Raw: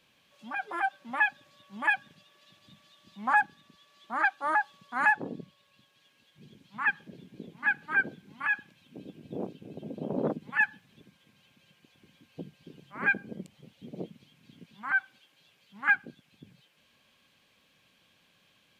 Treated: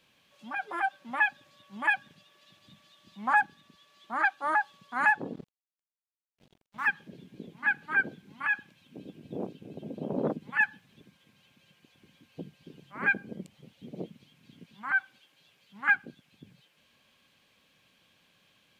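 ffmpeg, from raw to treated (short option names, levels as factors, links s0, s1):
-filter_complex "[0:a]asettb=1/sr,asplit=3[s0][s1][s2];[s0]atrim=end=5.334[s3];[s1]atrim=start=5.33:end=6.88,asetpts=PTS-STARTPTS,afade=t=in:d=0.004:c=qsin,afade=t=out:st=1.546:d=0.004:c=qsin,aeval=exprs='sgn(val(0))*max(abs(val(0))-0.00266,0)':c=same[s4];[s2]atrim=start=6.876[s5];[s3][s4]acrossfade=d=0.004:c1=hsin:c2=qsin[s6];[s6][s5]acrossfade=d=0.004:c1=qsin:c2=hsin"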